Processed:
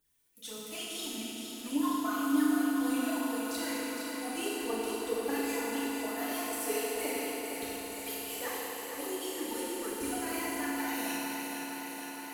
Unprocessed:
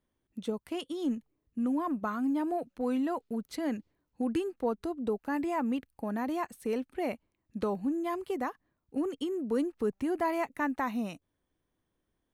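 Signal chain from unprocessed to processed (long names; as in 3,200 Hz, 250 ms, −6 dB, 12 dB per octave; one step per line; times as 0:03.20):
first-order pre-emphasis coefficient 0.97
time-frequency box erased 0:07.16–0:08.26, 210–2,200 Hz
low-shelf EQ 120 Hz +8.5 dB
in parallel at −2 dB: output level in coarse steps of 19 dB
on the sum: brickwall limiter −39.5 dBFS, peak gain reduction 9.5 dB
phase shifter 1.7 Hz, delay 3 ms, feedback 76%
on a send: feedback echo with a high-pass in the loop 463 ms, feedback 79%, high-pass 150 Hz, level −7 dB
on the sum: feedback delay network reverb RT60 3.4 s, high-frequency decay 0.75×, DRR −8 dB
level +3 dB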